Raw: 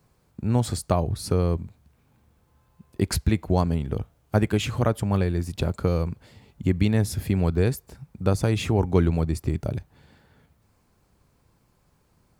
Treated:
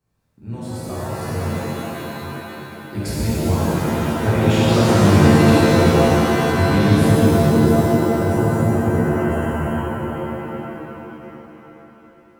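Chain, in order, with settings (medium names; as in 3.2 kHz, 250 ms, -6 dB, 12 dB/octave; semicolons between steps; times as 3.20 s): Doppler pass-by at 5.57 s, 8 m/s, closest 10 m; spectral selection erased 6.87–9.86 s, 960–6700 Hz; pitch-shifted reverb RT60 3.5 s, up +7 st, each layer -2 dB, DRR -10.5 dB; trim -2.5 dB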